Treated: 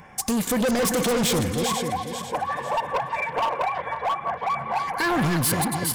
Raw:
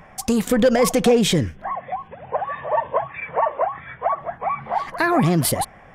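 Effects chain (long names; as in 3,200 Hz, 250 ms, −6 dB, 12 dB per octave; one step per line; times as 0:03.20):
feedback delay that plays each chunk backwards 247 ms, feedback 56%, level −7.5 dB
high-shelf EQ 4,200 Hz +7.5 dB
notch comb filter 640 Hz
gain into a clipping stage and back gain 20 dB
echo through a band-pass that steps 162 ms, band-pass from 1,400 Hz, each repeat 1.4 octaves, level −9 dB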